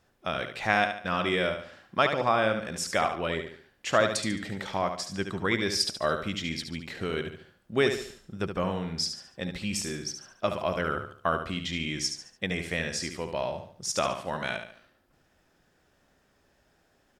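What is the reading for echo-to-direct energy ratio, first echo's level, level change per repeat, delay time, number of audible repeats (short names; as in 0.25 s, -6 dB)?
-7.0 dB, -7.5 dB, -8.0 dB, 72 ms, 4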